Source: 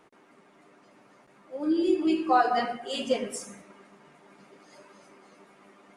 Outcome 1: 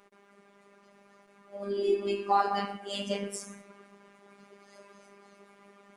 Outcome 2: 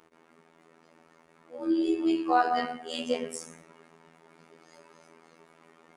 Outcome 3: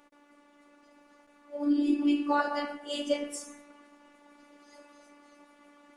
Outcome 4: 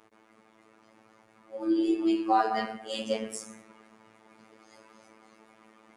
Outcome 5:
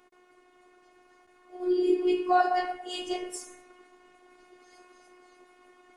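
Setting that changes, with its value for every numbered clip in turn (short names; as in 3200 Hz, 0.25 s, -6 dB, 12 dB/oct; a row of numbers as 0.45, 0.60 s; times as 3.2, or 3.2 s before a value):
robotiser, frequency: 200, 82, 290, 110, 360 Hz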